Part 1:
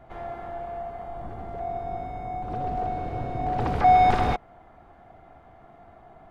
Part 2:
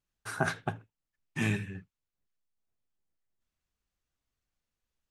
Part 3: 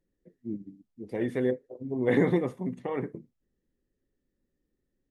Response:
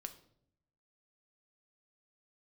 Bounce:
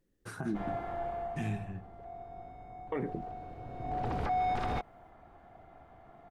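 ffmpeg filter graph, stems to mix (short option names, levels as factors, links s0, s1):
-filter_complex "[0:a]adelay=450,volume=2.66,afade=t=out:st=1.05:d=0.69:silence=0.223872,afade=t=in:st=3.65:d=0.58:silence=0.316228[s0];[1:a]lowshelf=f=390:g=10,acompressor=threshold=0.0398:ratio=2,volume=0.316,asplit=2[s1][s2];[s2]volume=0.501[s3];[2:a]volume=1.41,asplit=3[s4][s5][s6];[s4]atrim=end=0.86,asetpts=PTS-STARTPTS,afade=t=out:st=0.856:d=0.004:c=hsin[s7];[s5]atrim=start=0.86:end=2.92,asetpts=PTS-STARTPTS,volume=0[s8];[s6]atrim=start=2.92,asetpts=PTS-STARTPTS,afade=t=in:d=0.004:c=hsin[s9];[s7][s8][s9]concat=n=3:v=0:a=1,asplit=2[s10][s11];[s11]apad=whole_len=224980[s12];[s1][s12]sidechaincompress=threshold=0.0112:ratio=8:attack=16:release=390[s13];[3:a]atrim=start_sample=2205[s14];[s3][s14]afir=irnorm=-1:irlink=0[s15];[s0][s13][s10][s15]amix=inputs=4:normalize=0,alimiter=level_in=1.12:limit=0.0631:level=0:latency=1:release=55,volume=0.891"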